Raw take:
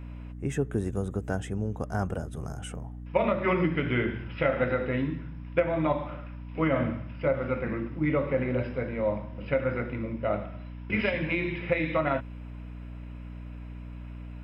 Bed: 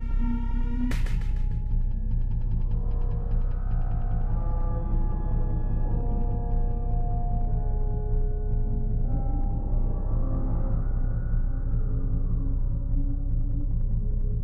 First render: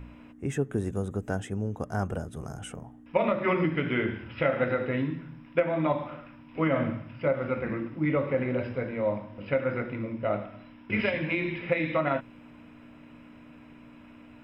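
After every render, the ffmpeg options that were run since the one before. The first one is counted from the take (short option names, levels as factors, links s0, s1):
-af "bandreject=f=60:t=h:w=4,bandreject=f=120:t=h:w=4,bandreject=f=180:t=h:w=4"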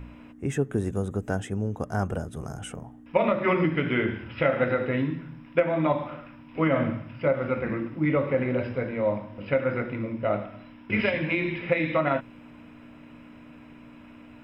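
-af "volume=1.33"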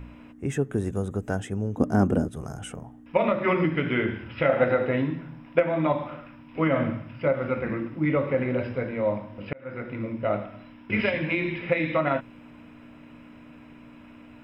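-filter_complex "[0:a]asettb=1/sr,asplit=3[s0][s1][s2];[s0]atrim=end=1.774[s3];[s1]atrim=start=1.77:end=2.28,asetpts=PTS-STARTPTS,afade=t=in:d=0.004:c=qsin,afade=t=out:st=0.506:d=0.004:c=qsin,equalizer=f=270:t=o:w=1.3:g=15[s4];[s2]atrim=start=2.276[s5];[s3][s4]acrossfade=d=0.004:c1=hsin:c2=qsin[s6];[s6][s5]acrossfade=d=0.004:c1=qsin:c2=hsin,asettb=1/sr,asplit=3[s7][s8][s9];[s7]atrim=end=4.494[s10];[s8]atrim=start=4.49:end=5.59,asetpts=PTS-STARTPTS,afade=t=in:d=0.004:c=qsin,afade=t=out:st=1.096:d=0.004:c=qsin,equalizer=f=700:w=1.5:g=6.5[s11];[s9]atrim=start=5.586[s12];[s10][s11]acrossfade=d=0.004:c1=hsin:c2=qsin[s13];[s13][s12]acrossfade=d=0.004:c1=qsin:c2=hsin,asplit=2[s14][s15];[s14]atrim=end=9.53,asetpts=PTS-STARTPTS,afade=t=out:st=9.526:d=0.004:c=hsin[s16];[s15]atrim=start=9.53,asetpts=PTS-STARTPTS,afade=t=in:d=0.52[s17];[s16][s17]concat=n=2:v=0:a=1"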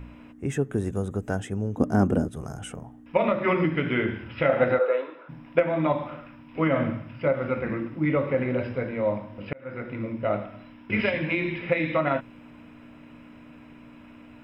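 -filter_complex "[0:a]asplit=3[s0][s1][s2];[s0]afade=t=out:st=4.78:d=0.02[s3];[s1]highpass=f=470:w=0.5412,highpass=f=470:w=1.3066,equalizer=f=510:t=q:w=4:g=8,equalizer=f=720:t=q:w=4:g=-4,equalizer=f=1300:t=q:w=4:g=9,equalizer=f=1900:t=q:w=4:g=-9,equalizer=f=3000:t=q:w=4:g=-6,lowpass=f=4000:w=0.5412,lowpass=f=4000:w=1.3066,afade=t=in:st=4.78:d=0.02,afade=t=out:st=5.28:d=0.02[s4];[s2]afade=t=in:st=5.28:d=0.02[s5];[s3][s4][s5]amix=inputs=3:normalize=0"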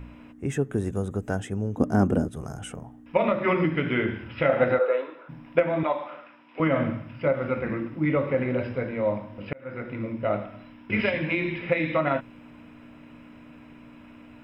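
-filter_complex "[0:a]asettb=1/sr,asplit=3[s0][s1][s2];[s0]atrim=end=5.834[s3];[s1]atrim=start=5.83:end=6.6,asetpts=PTS-STARTPTS,afade=t=in:d=0.004:c=qsin,afade=t=out:st=0.766:d=0.004:c=qsin,highpass=460,lowpass=6000[s4];[s2]atrim=start=6.596[s5];[s3][s4]acrossfade=d=0.004:c1=hsin:c2=qsin[s6];[s6][s5]acrossfade=d=0.004:c1=qsin:c2=hsin"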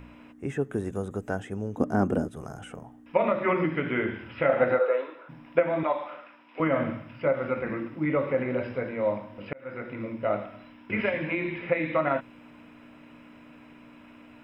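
-filter_complex "[0:a]acrossover=split=2500[s0][s1];[s1]acompressor=threshold=0.00282:ratio=4:attack=1:release=60[s2];[s0][s2]amix=inputs=2:normalize=0,lowshelf=f=190:g=-8.5"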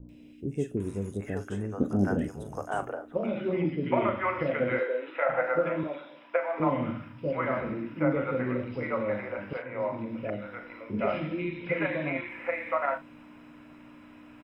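-filter_complex "[0:a]asplit=2[s0][s1];[s1]adelay=40,volume=0.266[s2];[s0][s2]amix=inputs=2:normalize=0,acrossover=split=520|2700[s3][s4][s5];[s5]adelay=90[s6];[s4]adelay=770[s7];[s3][s7][s6]amix=inputs=3:normalize=0"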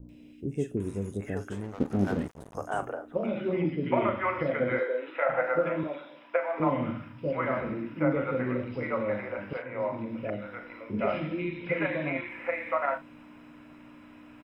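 -filter_complex "[0:a]asettb=1/sr,asplit=3[s0][s1][s2];[s0]atrim=end=1.524[s3];[s1]atrim=start=1.52:end=2.55,asetpts=PTS-STARTPTS,afade=t=in:d=0.004:c=qsin,afade=t=out:st=1.026:d=0.004:c=qsin,aeval=exprs='sgn(val(0))*max(abs(val(0))-0.0106,0)':c=same[s4];[s2]atrim=start=2.546[s5];[s3][s4]acrossfade=d=0.004:c1=hsin:c2=qsin[s6];[s6][s5]acrossfade=d=0.004:c1=qsin:c2=hsin,asettb=1/sr,asplit=3[s7][s8][s9];[s7]atrim=end=4.424[s10];[s8]atrim=start=4.42:end=4.98,asetpts=PTS-STARTPTS,afade=t=in:d=0.004:c=qsin,afade=t=out:st=0.556:d=0.004:c=qsin,bandreject=f=2700:w=5.8[s11];[s9]atrim=start=4.976[s12];[s10][s11]acrossfade=d=0.004:c1=hsin:c2=qsin[s13];[s13][s12]acrossfade=d=0.004:c1=qsin:c2=hsin"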